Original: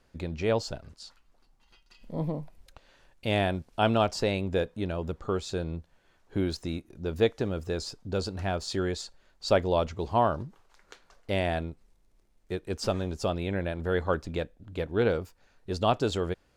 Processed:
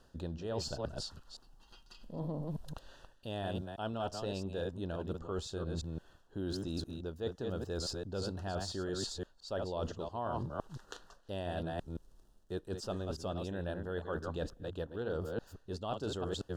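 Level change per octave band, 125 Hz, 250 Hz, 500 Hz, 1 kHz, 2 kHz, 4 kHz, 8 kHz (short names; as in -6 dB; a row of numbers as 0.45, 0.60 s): -7.5, -8.0, -10.0, -11.5, -12.0, -7.0, -4.0 dB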